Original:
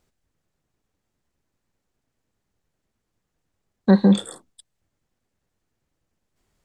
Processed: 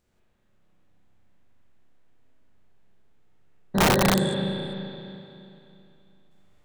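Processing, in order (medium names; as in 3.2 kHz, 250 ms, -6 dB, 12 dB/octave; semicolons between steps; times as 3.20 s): spectrogram pixelated in time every 200 ms; 3.90–4.32 s: steep high-pass 1.5 kHz 36 dB/octave; spring tank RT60 2.9 s, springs 31/42 ms, chirp 35 ms, DRR -9 dB; integer overflow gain 13.5 dB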